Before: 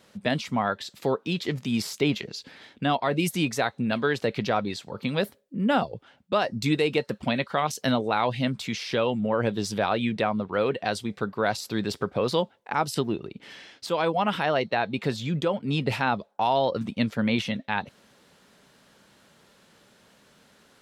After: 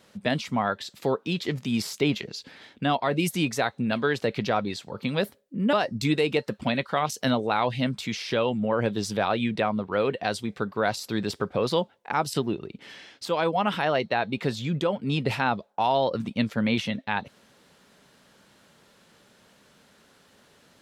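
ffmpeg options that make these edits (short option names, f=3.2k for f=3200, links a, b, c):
-filter_complex "[0:a]asplit=2[a][b];[a]atrim=end=5.732[c];[b]atrim=start=6.338[d];[c][d]acrossfade=d=0.004:c1=hsin:c2=hsin"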